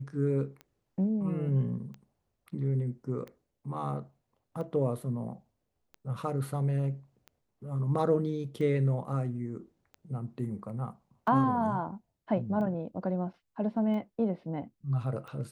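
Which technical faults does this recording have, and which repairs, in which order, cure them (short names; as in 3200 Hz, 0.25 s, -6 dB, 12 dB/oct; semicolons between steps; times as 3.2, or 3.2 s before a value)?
tick 45 rpm -31 dBFS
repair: de-click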